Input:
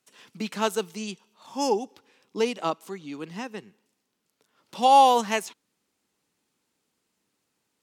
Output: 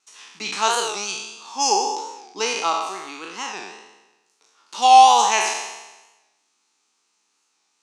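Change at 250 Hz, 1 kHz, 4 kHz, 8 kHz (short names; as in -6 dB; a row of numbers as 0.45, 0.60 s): -6.5, +6.5, +10.0, +14.0 dB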